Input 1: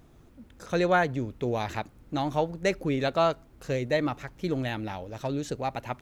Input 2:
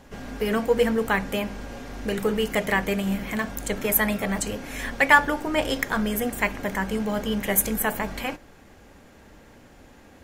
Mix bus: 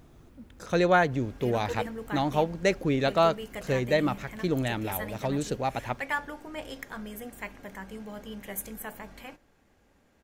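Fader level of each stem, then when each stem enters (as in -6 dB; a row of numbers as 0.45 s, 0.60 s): +1.5 dB, -14.5 dB; 0.00 s, 1.00 s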